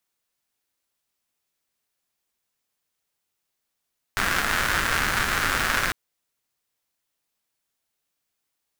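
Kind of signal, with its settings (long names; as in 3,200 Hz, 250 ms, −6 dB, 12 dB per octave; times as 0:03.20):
rain-like ticks over hiss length 1.75 s, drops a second 260, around 1,500 Hz, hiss −5 dB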